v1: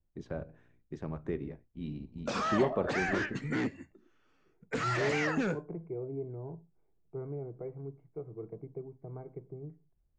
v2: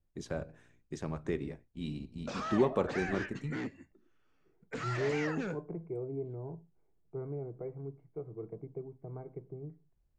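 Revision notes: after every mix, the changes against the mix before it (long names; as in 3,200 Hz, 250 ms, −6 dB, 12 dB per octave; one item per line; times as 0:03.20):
first voice: remove head-to-tape spacing loss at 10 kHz 26 dB
background −6.0 dB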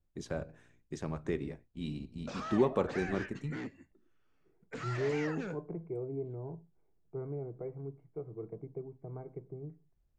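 background −3.0 dB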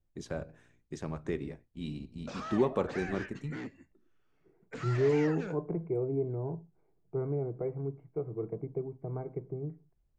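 second voice +6.5 dB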